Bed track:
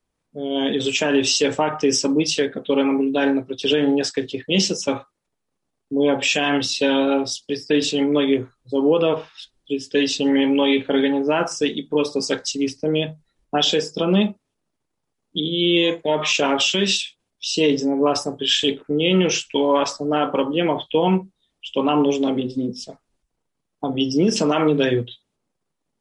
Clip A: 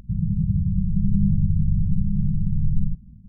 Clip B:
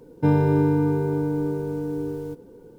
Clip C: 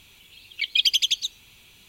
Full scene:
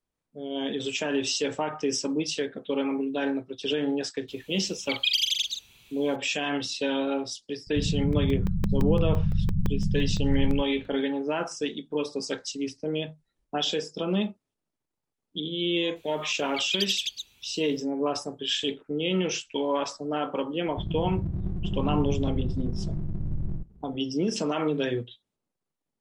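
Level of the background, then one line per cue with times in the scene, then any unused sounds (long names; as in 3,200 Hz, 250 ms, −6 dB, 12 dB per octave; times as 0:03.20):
bed track −9 dB
0:04.28: mix in C −5 dB + double-tracking delay 44 ms −5.5 dB
0:07.67: mix in A −4.5 dB + regular buffer underruns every 0.17 s, samples 64, zero, from 0:00.46
0:15.95: mix in C −8.5 dB, fades 0.02 s
0:20.68: mix in A −8 dB + lower of the sound and its delayed copy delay 0.97 ms
not used: B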